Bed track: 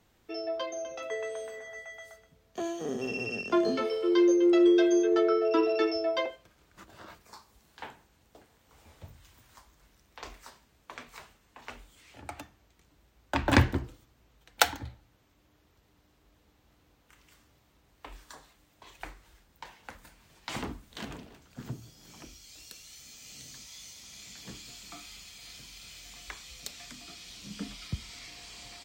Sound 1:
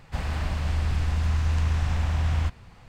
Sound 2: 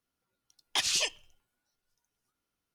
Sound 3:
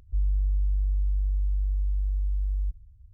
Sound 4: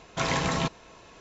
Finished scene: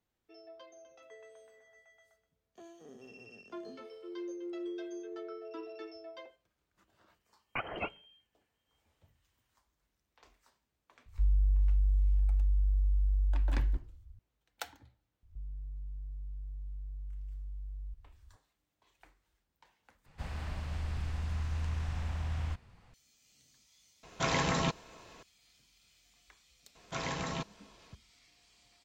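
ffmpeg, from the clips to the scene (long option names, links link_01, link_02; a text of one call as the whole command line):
ffmpeg -i bed.wav -i cue0.wav -i cue1.wav -i cue2.wav -i cue3.wav -filter_complex "[3:a]asplit=2[link_01][link_02];[4:a]asplit=2[link_03][link_04];[0:a]volume=-19dB[link_05];[2:a]lowpass=frequency=2700:width_type=q:width=0.5098,lowpass=frequency=2700:width_type=q:width=0.6013,lowpass=frequency=2700:width_type=q:width=0.9,lowpass=frequency=2700:width_type=q:width=2.563,afreqshift=-3200[link_06];[link_02]alimiter=level_in=6.5dB:limit=-24dB:level=0:latency=1:release=38,volume=-6.5dB[link_07];[link_05]asplit=2[link_08][link_09];[link_08]atrim=end=20.064[link_10];[1:a]atrim=end=2.88,asetpts=PTS-STARTPTS,volume=-11dB[link_11];[link_09]atrim=start=22.936[link_12];[link_06]atrim=end=2.74,asetpts=PTS-STARTPTS,volume=-1.5dB,afade=type=in:duration=0.004:curve=hsin,afade=type=out:start_time=2.736:duration=0.004:curve=hsin,adelay=6800[link_13];[link_01]atrim=end=3.13,asetpts=PTS-STARTPTS,volume=-2dB,afade=type=in:duration=0.004:curve=hsin,afade=type=out:start_time=3.126:duration=0.004:curve=hsin,adelay=487746S[link_14];[link_07]atrim=end=3.13,asetpts=PTS-STARTPTS,volume=-7.5dB,afade=type=in:duration=0.004:curve=hsin,afade=type=out:start_time=3.126:duration=0.004:curve=hsin,adelay=15230[link_15];[link_03]atrim=end=1.2,asetpts=PTS-STARTPTS,volume=-3.5dB,afade=type=in:duration=0.004:curve=hsin,afade=type=out:start_time=1.196:duration=0.004:curve=hsin,adelay=24030[link_16];[link_04]atrim=end=1.2,asetpts=PTS-STARTPTS,volume=-10dB,afade=type=in:duration=0.004:curve=hsin,afade=type=out:start_time=1.196:duration=0.004:curve=hsin,adelay=26750[link_17];[link_10][link_11]acrossfade=duration=0.004:curve1=hsin:curve2=hsin[link_18];[link_18][link_12]acrossfade=duration=0.004:curve1=hsin:curve2=hsin[link_19];[link_19][link_13][link_14][link_15][link_16][link_17]amix=inputs=6:normalize=0" out.wav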